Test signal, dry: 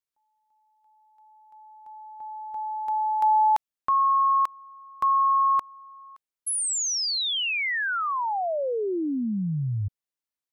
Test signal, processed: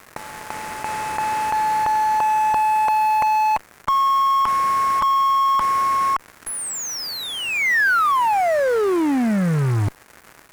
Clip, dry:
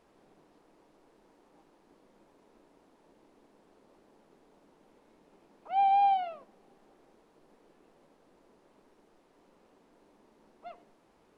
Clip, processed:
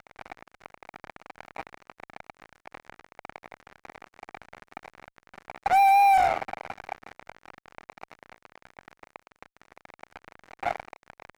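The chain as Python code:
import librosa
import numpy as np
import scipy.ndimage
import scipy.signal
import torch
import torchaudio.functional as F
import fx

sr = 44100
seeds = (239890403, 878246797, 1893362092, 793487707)

y = fx.bin_compress(x, sr, power=0.4)
y = fx.fuzz(y, sr, gain_db=36.0, gate_db=-36.0)
y = fx.high_shelf_res(y, sr, hz=2500.0, db=-8.5, q=1.5)
y = F.gain(torch.from_numpy(y), -4.0).numpy()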